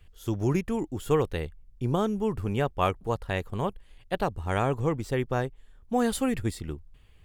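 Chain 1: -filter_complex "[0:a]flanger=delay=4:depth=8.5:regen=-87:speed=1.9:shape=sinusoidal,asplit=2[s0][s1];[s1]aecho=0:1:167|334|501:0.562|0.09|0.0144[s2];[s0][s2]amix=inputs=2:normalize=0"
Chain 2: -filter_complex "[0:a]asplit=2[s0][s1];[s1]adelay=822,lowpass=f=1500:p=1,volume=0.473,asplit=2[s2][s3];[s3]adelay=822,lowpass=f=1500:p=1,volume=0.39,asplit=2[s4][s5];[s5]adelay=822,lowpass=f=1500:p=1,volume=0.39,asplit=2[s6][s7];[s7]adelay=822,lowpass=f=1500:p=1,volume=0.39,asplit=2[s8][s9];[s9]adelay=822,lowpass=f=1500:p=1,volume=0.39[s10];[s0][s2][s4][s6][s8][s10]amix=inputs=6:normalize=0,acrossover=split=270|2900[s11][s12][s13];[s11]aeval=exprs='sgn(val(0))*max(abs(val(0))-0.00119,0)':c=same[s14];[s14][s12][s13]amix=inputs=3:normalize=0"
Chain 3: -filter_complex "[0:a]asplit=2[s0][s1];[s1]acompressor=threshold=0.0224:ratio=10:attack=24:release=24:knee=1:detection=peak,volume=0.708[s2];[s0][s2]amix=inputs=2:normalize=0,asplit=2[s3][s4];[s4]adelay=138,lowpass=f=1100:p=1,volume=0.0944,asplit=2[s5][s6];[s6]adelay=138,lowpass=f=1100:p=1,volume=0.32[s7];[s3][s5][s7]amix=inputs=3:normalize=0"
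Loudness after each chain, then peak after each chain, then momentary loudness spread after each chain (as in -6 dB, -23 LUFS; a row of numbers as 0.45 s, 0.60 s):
-33.0 LUFS, -29.0 LUFS, -26.5 LUFS; -15.0 dBFS, -9.5 dBFS, -9.0 dBFS; 9 LU, 7 LU, 8 LU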